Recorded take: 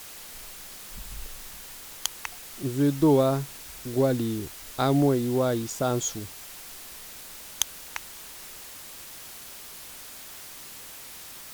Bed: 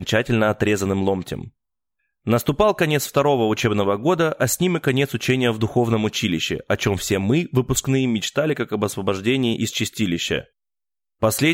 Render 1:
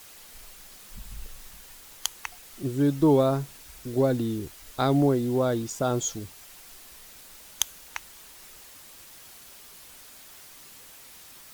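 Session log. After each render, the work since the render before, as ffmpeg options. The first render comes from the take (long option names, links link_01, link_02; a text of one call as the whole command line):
ffmpeg -i in.wav -af "afftdn=noise_reduction=6:noise_floor=-43" out.wav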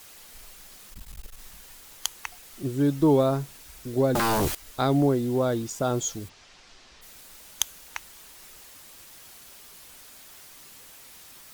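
ffmpeg -i in.wav -filter_complex "[0:a]asettb=1/sr,asplit=3[link_01][link_02][link_03];[link_01]atrim=end=0.904[link_04];[link_02]atrim=start=0.9:end=1.39,asetpts=PTS-STARTPTS,afade=type=in:duration=0.004:curve=qsin,afade=type=out:start_time=0.486:duration=0.004:curve=qsin,aeval=exprs='clip(val(0),-1,0.00501)':channel_layout=same[link_05];[link_03]atrim=start=1.386[link_06];[link_04][link_05]acrossfade=duration=0.004:curve1=hsin:curve2=qsin[link_07];[link_07][link_06]acrossfade=duration=0.004:curve1=qsin:curve2=hsin,asettb=1/sr,asplit=3[link_08][link_09][link_10];[link_08]atrim=end=4.154[link_11];[link_09]atrim=start=4.15:end=4.55,asetpts=PTS-STARTPTS,afade=type=in:duration=0.004:curve=qsin,afade=type=out:start_time=0.396:duration=0.004:curve=qsin,aeval=exprs='0.1*sin(PI/2*5.01*val(0)/0.1)':channel_layout=same[link_12];[link_10]atrim=start=4.546[link_13];[link_11][link_12]acrossfade=duration=0.004:curve1=hsin:curve2=qsin[link_14];[link_14][link_13]acrossfade=duration=0.004:curve1=qsin:curve2=hsin,asplit=3[link_15][link_16][link_17];[link_15]afade=type=out:start_time=6.28:duration=0.02[link_18];[link_16]lowpass=frequency=5800:width=0.5412,lowpass=frequency=5800:width=1.3066,afade=type=in:start_time=6.28:duration=0.02,afade=type=out:start_time=7.01:duration=0.02[link_19];[link_17]afade=type=in:start_time=7.01:duration=0.02[link_20];[link_18][link_19][link_20]amix=inputs=3:normalize=0" out.wav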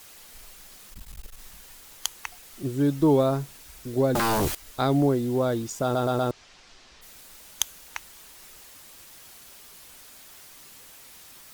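ffmpeg -i in.wav -filter_complex "[0:a]asplit=5[link_01][link_02][link_03][link_04][link_05];[link_01]atrim=end=5.952[link_06];[link_02]atrim=start=5.828:end=5.952[link_07];[link_03]atrim=start=5.828:end=5.952[link_08];[link_04]atrim=start=5.828:end=5.952[link_09];[link_05]atrim=start=6.308[link_10];[link_06][link_07]acrossfade=duration=0.004:curve1=hsin:curve2=hsin[link_11];[link_11][link_08]acrossfade=duration=0.004:curve1=hsin:curve2=hsin[link_12];[link_12][link_09]acrossfade=duration=0.004:curve1=hsin:curve2=hsin[link_13];[link_13][link_10]acrossfade=duration=0.004:curve1=hsin:curve2=hsin" out.wav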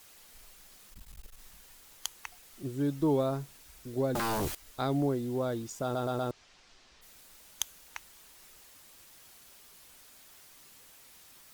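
ffmpeg -i in.wav -af "volume=-7.5dB" out.wav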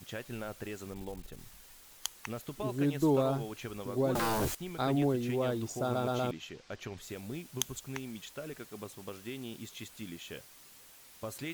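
ffmpeg -i in.wav -i bed.wav -filter_complex "[1:a]volume=-22.5dB[link_01];[0:a][link_01]amix=inputs=2:normalize=0" out.wav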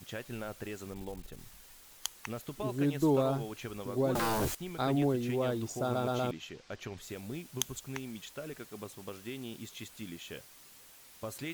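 ffmpeg -i in.wav -af anull out.wav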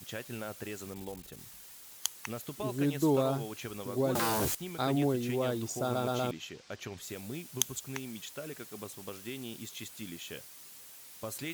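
ffmpeg -i in.wav -af "highpass=71,highshelf=frequency=4100:gain=6" out.wav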